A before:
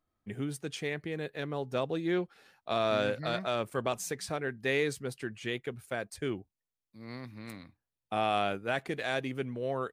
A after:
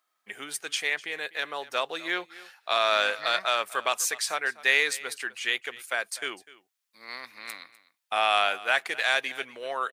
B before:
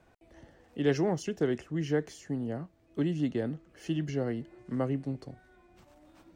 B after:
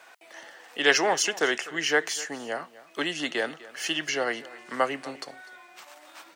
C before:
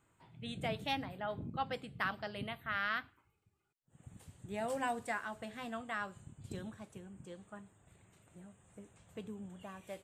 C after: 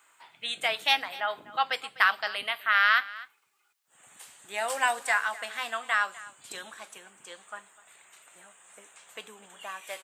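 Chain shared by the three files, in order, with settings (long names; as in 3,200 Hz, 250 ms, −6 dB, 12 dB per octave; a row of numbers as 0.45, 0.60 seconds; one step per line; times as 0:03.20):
high-pass filter 1,100 Hz 12 dB per octave
single-tap delay 250 ms −19 dB
loudness normalisation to −27 LKFS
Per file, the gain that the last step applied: +11.5, +19.0, +15.5 decibels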